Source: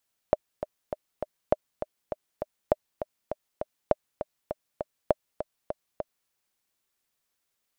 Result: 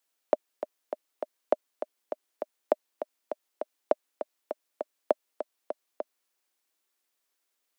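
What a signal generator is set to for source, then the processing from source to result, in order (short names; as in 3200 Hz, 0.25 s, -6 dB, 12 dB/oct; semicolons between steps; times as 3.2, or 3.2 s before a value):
metronome 201 bpm, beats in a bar 4, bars 5, 609 Hz, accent 10.5 dB -6.5 dBFS
steep high-pass 250 Hz 48 dB/oct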